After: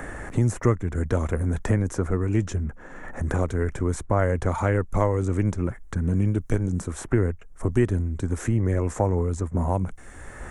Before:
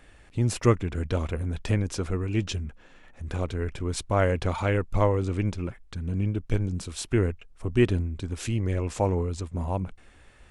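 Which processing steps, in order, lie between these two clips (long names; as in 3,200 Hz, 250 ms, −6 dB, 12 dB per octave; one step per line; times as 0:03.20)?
flat-topped bell 3,500 Hz −14 dB 1.3 octaves
multiband upward and downward compressor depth 70%
level +3 dB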